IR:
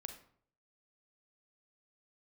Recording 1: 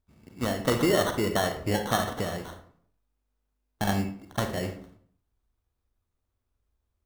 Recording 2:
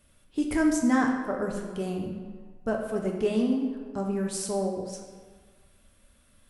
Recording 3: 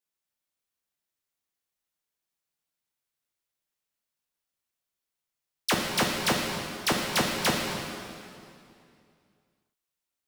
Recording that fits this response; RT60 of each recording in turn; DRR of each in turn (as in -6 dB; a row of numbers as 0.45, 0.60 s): 1; 0.60, 1.5, 2.5 s; 6.0, 0.5, 0.0 dB